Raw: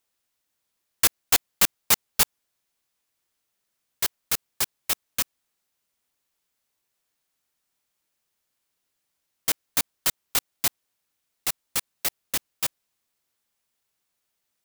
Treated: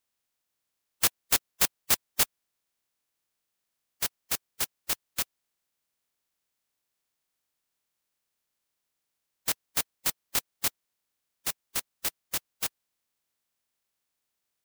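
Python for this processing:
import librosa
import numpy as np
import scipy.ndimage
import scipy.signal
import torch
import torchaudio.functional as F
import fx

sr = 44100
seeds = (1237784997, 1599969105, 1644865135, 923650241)

y = fx.spec_quant(x, sr, step_db=30)
y = F.gain(torch.from_numpy(y), -4.0).numpy()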